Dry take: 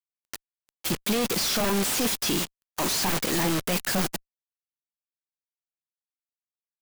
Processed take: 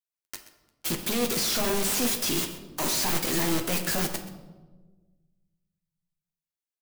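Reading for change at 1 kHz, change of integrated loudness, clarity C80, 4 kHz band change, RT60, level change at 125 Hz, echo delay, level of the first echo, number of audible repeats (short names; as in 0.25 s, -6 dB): -2.5 dB, -1.0 dB, 10.5 dB, -1.5 dB, 1.3 s, -2.5 dB, 0.129 s, -16.0 dB, 1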